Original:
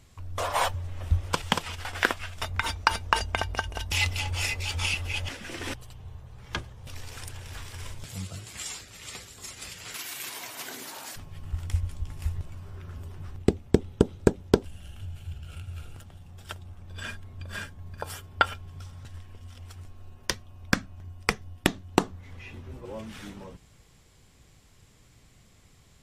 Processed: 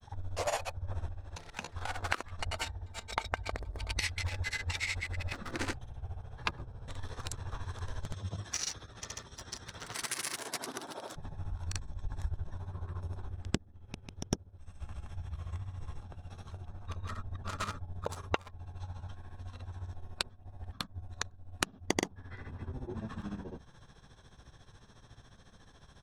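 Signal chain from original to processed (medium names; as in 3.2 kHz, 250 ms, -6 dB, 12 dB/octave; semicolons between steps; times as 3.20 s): local Wiener filter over 15 samples; treble shelf 3 kHz +9 dB; compression 16:1, threshold -31 dBFS, peak gain reduction 20 dB; formant shift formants -4 st; granulator 100 ms, grains 14 per s, pitch spread up and down by 0 st; tape noise reduction on one side only encoder only; trim +3.5 dB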